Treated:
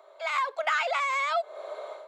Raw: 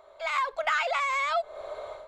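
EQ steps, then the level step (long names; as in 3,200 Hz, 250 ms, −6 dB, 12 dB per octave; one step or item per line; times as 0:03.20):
Butterworth high-pass 300 Hz 72 dB per octave
0.0 dB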